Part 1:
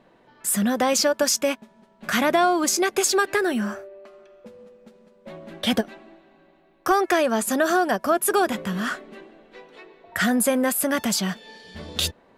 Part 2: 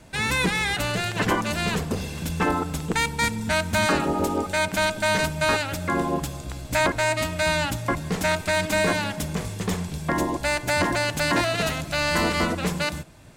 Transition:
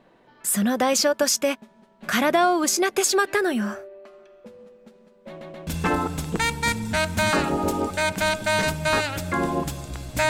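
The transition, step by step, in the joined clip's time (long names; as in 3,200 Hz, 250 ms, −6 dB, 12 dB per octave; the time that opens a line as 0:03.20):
part 1
0:05.28: stutter in place 0.13 s, 3 plays
0:05.67: continue with part 2 from 0:02.23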